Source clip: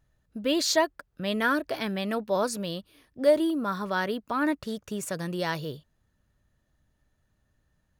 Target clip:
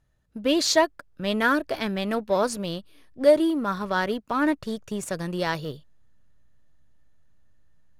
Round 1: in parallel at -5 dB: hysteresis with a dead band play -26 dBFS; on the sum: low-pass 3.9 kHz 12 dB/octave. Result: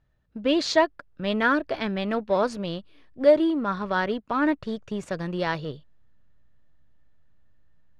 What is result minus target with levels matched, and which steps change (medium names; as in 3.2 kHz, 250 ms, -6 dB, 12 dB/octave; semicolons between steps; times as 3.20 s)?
8 kHz band -10.0 dB
change: low-pass 13 kHz 12 dB/octave